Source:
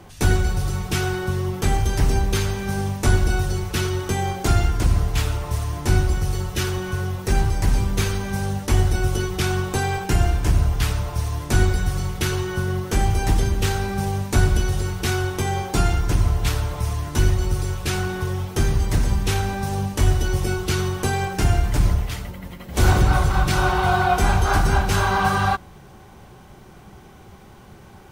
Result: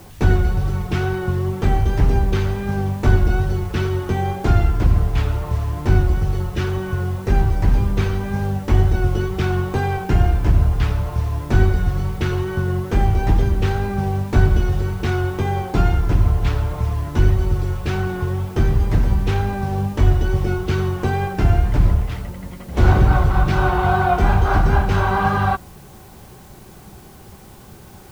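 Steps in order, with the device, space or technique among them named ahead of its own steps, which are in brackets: cassette deck with a dirty head (tape spacing loss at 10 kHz 26 dB; wow and flutter 26 cents; white noise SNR 33 dB); trim +3.5 dB

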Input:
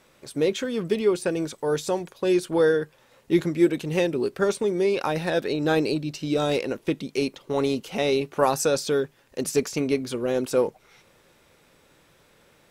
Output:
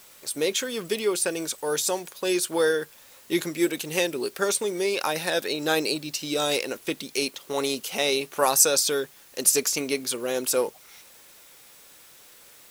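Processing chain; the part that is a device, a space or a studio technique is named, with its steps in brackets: turntable without a phono preamp (RIAA curve recording; white noise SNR 27 dB)

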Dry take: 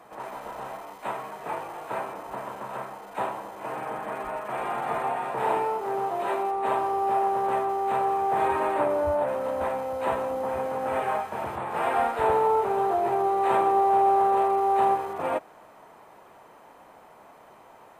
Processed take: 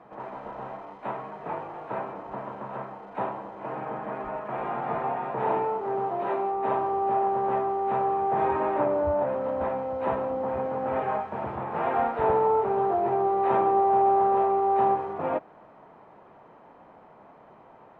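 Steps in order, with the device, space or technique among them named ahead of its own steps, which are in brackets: phone in a pocket (low-pass 3.9 kHz 12 dB/octave; peaking EQ 170 Hz +5 dB 1.5 oct; treble shelf 2.3 kHz -11 dB)

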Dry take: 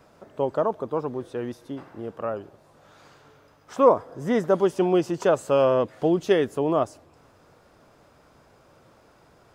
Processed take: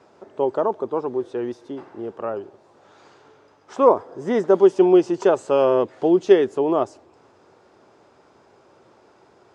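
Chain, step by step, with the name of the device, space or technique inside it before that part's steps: car door speaker (cabinet simulation 110–7900 Hz, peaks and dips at 150 Hz -6 dB, 380 Hz +9 dB, 860 Hz +5 dB)

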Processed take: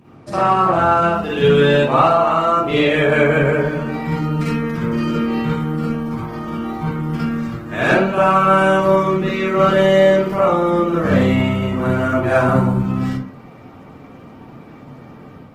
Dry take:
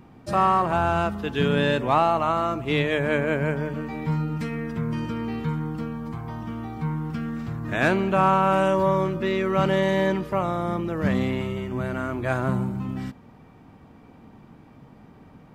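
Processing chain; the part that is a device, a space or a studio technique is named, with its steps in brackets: far-field microphone of a smart speaker (reverberation RT60 0.45 s, pre-delay 44 ms, DRR -7.5 dB; high-pass 110 Hz 12 dB/octave; level rider gain up to 3.5 dB; Opus 16 kbps 48 kHz)

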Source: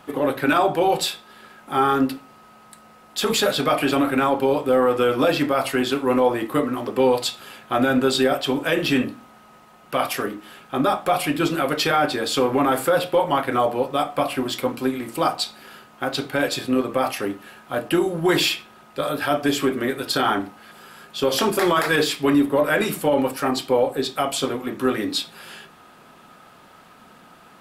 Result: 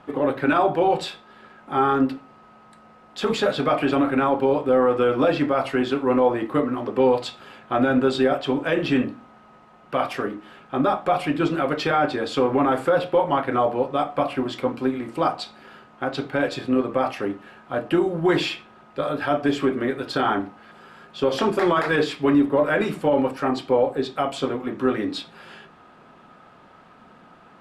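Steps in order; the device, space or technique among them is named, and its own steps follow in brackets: through cloth (low-pass 8.5 kHz 12 dB/octave; treble shelf 3.7 kHz -14.5 dB)

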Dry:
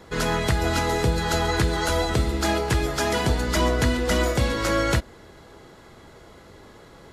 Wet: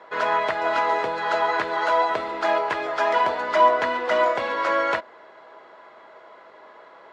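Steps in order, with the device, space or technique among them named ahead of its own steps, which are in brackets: tin-can telephone (band-pass 660–2100 Hz; small resonant body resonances 630/990 Hz, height 10 dB, ringing for 70 ms); trim +4 dB

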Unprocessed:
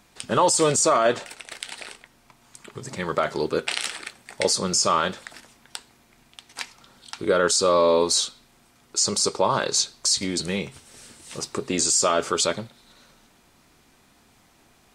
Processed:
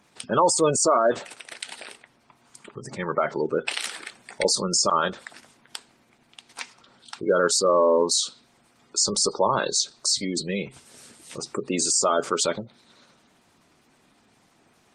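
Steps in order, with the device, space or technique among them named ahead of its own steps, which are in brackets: noise-suppressed video call (high-pass 120 Hz 12 dB/octave; spectral gate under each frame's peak -20 dB strong; Opus 20 kbps 48 kHz)

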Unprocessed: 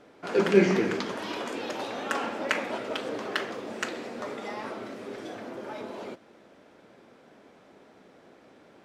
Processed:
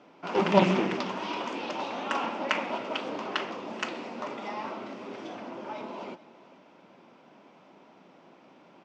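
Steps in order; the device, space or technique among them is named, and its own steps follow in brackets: full-range speaker at full volume (loudspeaker Doppler distortion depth 0.97 ms; cabinet simulation 160–6100 Hz, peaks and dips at 170 Hz +5 dB, 450 Hz -6 dB, 960 Hz +6 dB, 1.7 kHz -6 dB, 2.7 kHz +4 dB, 4 kHz -4 dB); delay 439 ms -19 dB

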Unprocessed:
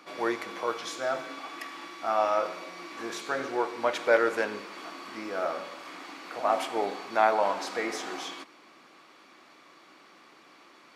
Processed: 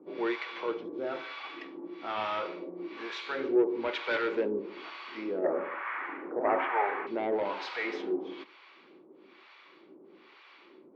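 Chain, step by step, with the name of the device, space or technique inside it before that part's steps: guitar amplifier with harmonic tremolo (harmonic tremolo 1.1 Hz, depth 100%, crossover 680 Hz; saturation -27 dBFS, distortion -12 dB; cabinet simulation 110–3700 Hz, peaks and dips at 130 Hz -5 dB, 380 Hz +9 dB, 700 Hz -9 dB, 1.2 kHz -6 dB, 1.7 kHz -4 dB); 5.44–7.07 s: FFT filter 200 Hz 0 dB, 1.8 kHz +13 dB, 4.3 kHz -23 dB; trim +5 dB

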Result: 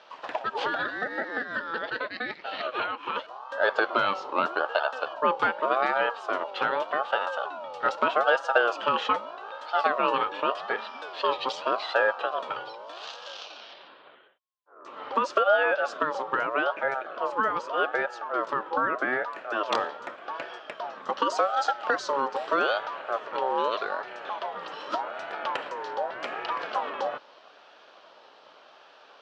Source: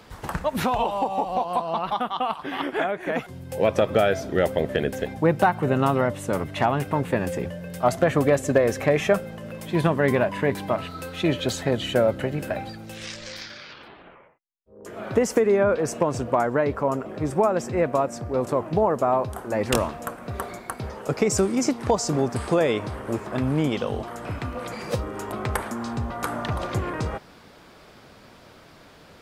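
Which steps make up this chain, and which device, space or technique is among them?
voice changer toy (ring modulator with a swept carrier 870 Hz, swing 25%, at 0.83 Hz; cabinet simulation 460–4800 Hz, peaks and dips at 600 Hz +5 dB, 2.1 kHz -9 dB, 3.1 kHz +4 dB)

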